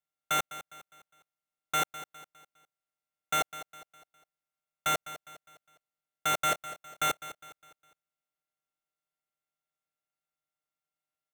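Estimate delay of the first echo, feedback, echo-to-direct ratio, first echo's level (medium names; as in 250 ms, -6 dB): 204 ms, 41%, -13.5 dB, -14.5 dB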